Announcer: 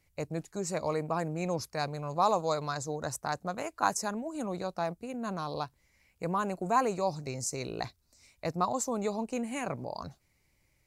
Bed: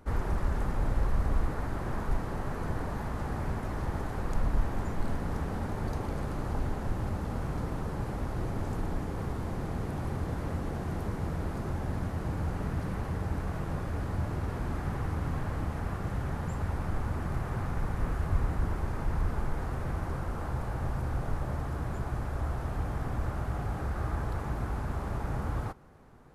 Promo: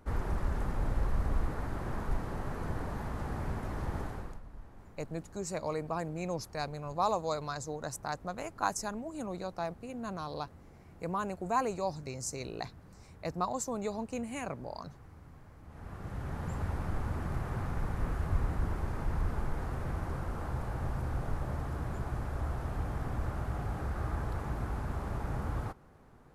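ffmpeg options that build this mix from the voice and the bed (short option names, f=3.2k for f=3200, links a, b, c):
-filter_complex "[0:a]adelay=4800,volume=-3.5dB[a];[1:a]volume=15.5dB,afade=t=out:st=4.02:d=0.38:silence=0.125893,afade=t=in:st=15.63:d=0.91:silence=0.11885[b];[a][b]amix=inputs=2:normalize=0"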